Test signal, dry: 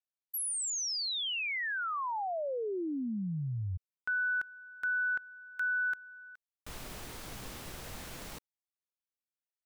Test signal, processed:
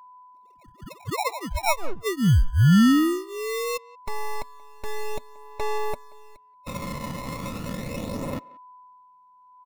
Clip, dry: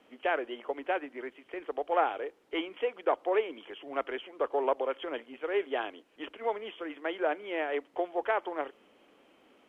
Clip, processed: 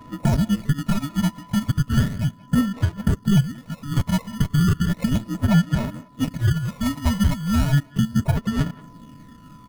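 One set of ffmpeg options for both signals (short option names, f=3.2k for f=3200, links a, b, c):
-filter_complex "[0:a]afftfilt=real='real(if(lt(b,960),b+48*(1-2*mod(floor(b/48),2)),b),0)':imag='imag(if(lt(b,960),b+48*(1-2*mod(floor(b/48),2)),b),0)':win_size=2048:overlap=0.75,aecho=1:1:2.9:0.93,afreqshift=-30,highpass=150,equalizer=f=180:t=q:w=4:g=10,equalizer=f=390:t=q:w=4:g=-5,equalizer=f=620:t=q:w=4:g=10,equalizer=f=920:t=q:w=4:g=-7,equalizer=f=1.4k:t=q:w=4:g=9,lowpass=f=2.9k:w=0.5412,lowpass=f=2.9k:w=1.3066,acrossover=split=480[a][b];[a]aeval=exprs='abs(val(0))':c=same[c];[b]acrusher=samples=28:mix=1:aa=0.000001[d];[c][d]amix=inputs=2:normalize=0,aeval=exprs='val(0)+0.00141*sin(2*PI*1000*n/s)':c=same,aphaser=in_gain=1:out_gain=1:delay=1:decay=0.45:speed=0.35:type=sinusoidal,asplit=2[e][f];[f]adelay=180,highpass=300,lowpass=3.4k,asoftclip=type=hard:threshold=-14dB,volume=-22dB[g];[e][g]amix=inputs=2:normalize=0,acompressor=threshold=-19dB:ratio=5:attack=1.2:release=700:knee=1:detection=rms,volume=6.5dB"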